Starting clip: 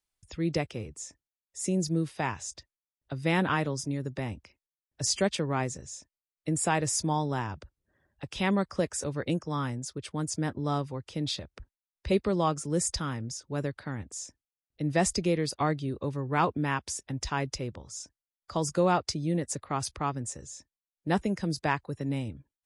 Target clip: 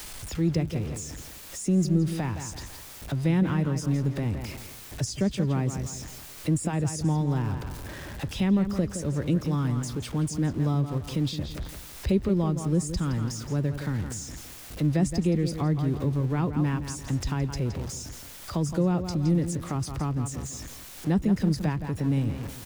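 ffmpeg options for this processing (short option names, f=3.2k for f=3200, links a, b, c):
-filter_complex "[0:a]aeval=exprs='val(0)+0.5*0.0126*sgn(val(0))':c=same,asplit=2[a][b];[b]adelay=167,lowpass=f=4.1k:p=1,volume=-10dB,asplit=2[c][d];[d]adelay=167,lowpass=f=4.1k:p=1,volume=0.33,asplit=2[e][f];[f]adelay=167,lowpass=f=4.1k:p=1,volume=0.33,asplit=2[g][h];[h]adelay=167,lowpass=f=4.1k:p=1,volume=0.33[i];[a][c][e][g][i]amix=inputs=5:normalize=0,acrossover=split=310[j][k];[k]acompressor=threshold=-45dB:ratio=3[l];[j][l]amix=inputs=2:normalize=0,volume=6dB"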